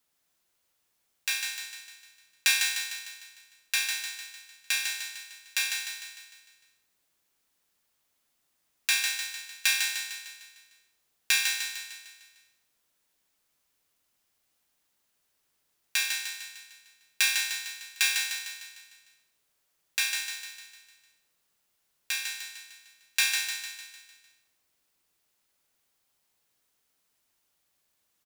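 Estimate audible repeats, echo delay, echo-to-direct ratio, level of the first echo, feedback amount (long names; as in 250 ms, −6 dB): 6, 151 ms, −3.5 dB, −5.0 dB, 52%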